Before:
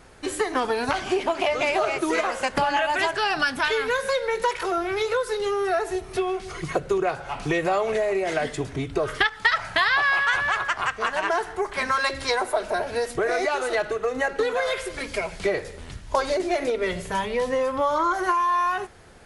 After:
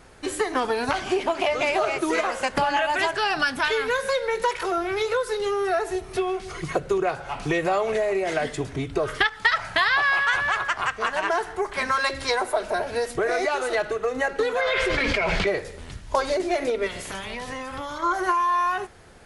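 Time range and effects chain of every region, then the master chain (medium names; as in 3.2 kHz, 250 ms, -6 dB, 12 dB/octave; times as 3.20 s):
14.61–15.47 s: low-pass 2.9 kHz + tilt shelf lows -4 dB, about 1.5 kHz + level flattener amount 100%
16.86–18.02 s: spectral peaks clipped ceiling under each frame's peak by 17 dB + compression 10:1, threshold -29 dBFS
whole clip: none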